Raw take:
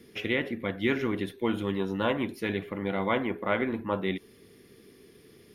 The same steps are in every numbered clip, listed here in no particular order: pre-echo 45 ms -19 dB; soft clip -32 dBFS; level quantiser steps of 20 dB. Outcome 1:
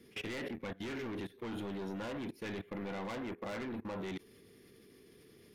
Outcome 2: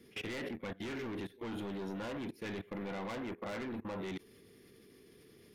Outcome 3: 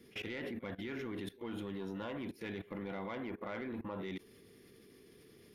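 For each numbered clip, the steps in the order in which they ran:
soft clip > pre-echo > level quantiser; pre-echo > soft clip > level quantiser; pre-echo > level quantiser > soft clip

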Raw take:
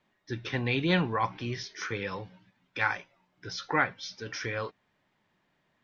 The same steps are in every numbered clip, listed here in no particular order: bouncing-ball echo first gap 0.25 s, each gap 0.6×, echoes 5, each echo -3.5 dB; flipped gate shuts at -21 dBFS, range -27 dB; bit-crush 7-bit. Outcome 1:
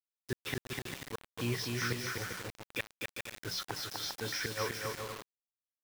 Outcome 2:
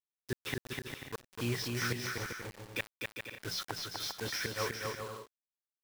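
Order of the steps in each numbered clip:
flipped gate > bouncing-ball echo > bit-crush; flipped gate > bit-crush > bouncing-ball echo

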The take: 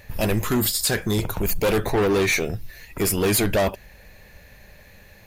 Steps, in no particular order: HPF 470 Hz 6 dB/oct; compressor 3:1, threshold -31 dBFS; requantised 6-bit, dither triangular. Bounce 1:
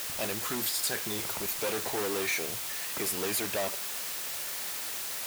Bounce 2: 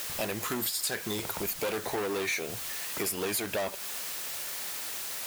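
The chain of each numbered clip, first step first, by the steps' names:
compressor > requantised > HPF; requantised > HPF > compressor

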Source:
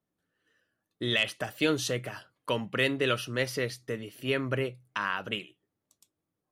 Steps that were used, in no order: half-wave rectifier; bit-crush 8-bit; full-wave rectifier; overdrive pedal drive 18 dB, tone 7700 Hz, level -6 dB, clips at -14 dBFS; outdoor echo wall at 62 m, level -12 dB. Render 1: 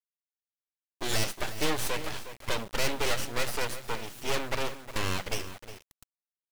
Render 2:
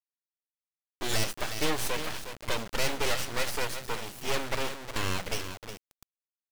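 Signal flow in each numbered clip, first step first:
first half-wave rectifier > overdrive pedal > second full-wave rectifier > outdoor echo > bit-crush; first half-wave rectifier > outdoor echo > bit-crush > overdrive pedal > second full-wave rectifier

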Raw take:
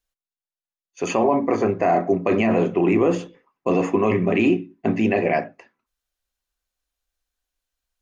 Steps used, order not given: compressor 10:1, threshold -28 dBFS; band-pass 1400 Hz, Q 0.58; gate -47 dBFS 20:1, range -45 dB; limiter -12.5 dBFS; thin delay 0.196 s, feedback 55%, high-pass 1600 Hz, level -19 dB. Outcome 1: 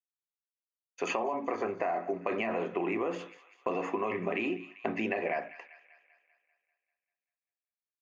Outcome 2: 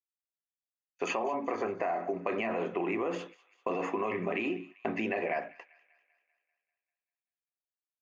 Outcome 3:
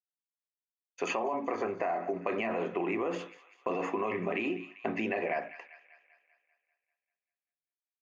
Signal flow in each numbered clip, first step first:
gate > band-pass > limiter > thin delay > compressor; limiter > band-pass > gate > compressor > thin delay; gate > thin delay > limiter > band-pass > compressor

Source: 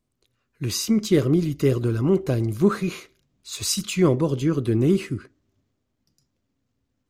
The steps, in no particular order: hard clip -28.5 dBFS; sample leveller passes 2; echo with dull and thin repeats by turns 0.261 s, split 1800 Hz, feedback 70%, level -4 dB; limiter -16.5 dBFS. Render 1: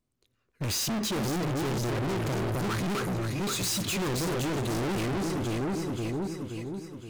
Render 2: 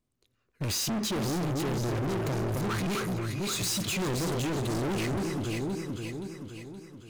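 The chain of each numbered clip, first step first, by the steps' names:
sample leveller > echo with dull and thin repeats by turns > hard clip > limiter; sample leveller > limiter > echo with dull and thin repeats by turns > hard clip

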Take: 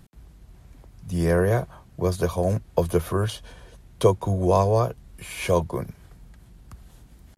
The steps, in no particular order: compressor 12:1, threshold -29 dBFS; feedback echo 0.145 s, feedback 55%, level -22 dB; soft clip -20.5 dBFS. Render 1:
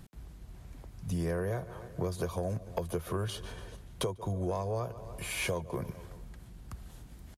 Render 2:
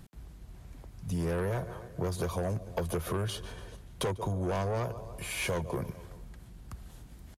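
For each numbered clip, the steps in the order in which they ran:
feedback echo > compressor > soft clip; feedback echo > soft clip > compressor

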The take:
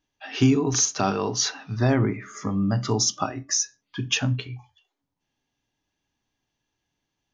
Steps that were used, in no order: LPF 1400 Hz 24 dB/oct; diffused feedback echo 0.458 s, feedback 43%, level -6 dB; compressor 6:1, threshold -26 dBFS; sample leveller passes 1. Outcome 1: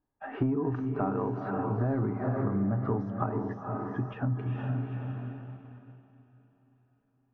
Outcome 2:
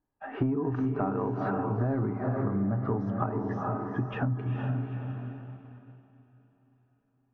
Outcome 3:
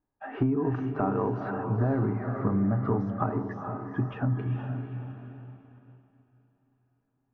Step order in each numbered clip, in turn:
diffused feedback echo > sample leveller > compressor > LPF; diffused feedback echo > sample leveller > LPF > compressor; compressor > diffused feedback echo > sample leveller > LPF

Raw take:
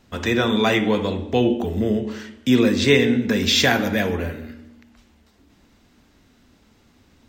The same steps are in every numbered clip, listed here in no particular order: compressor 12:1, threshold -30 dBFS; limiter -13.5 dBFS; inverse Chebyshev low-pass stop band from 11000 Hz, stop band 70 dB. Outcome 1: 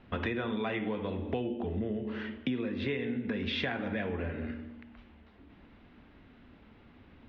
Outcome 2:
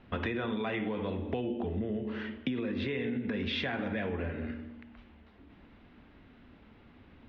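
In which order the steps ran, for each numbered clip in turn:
inverse Chebyshev low-pass > compressor > limiter; inverse Chebyshev low-pass > limiter > compressor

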